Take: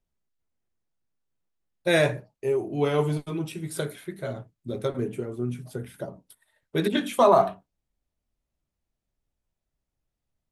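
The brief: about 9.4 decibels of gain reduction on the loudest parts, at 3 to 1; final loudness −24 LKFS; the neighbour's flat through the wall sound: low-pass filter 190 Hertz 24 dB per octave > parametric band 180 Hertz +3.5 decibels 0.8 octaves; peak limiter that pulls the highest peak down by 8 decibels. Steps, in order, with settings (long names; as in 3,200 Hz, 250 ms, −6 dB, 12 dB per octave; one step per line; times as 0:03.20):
downward compressor 3 to 1, threshold −26 dBFS
brickwall limiter −21 dBFS
low-pass filter 190 Hz 24 dB per octave
parametric band 180 Hz +3.5 dB 0.8 octaves
level +15 dB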